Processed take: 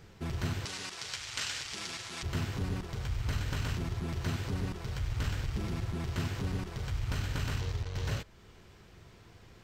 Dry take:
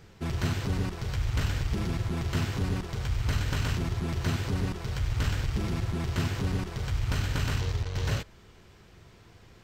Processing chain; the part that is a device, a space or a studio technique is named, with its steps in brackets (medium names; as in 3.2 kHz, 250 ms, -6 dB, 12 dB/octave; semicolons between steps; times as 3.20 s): parallel compression (in parallel at -3 dB: compression, threshold -42 dBFS, peak gain reduction 17.5 dB); 0.65–2.23 s: on the sum: frequency weighting ITU-R 468; trim -6 dB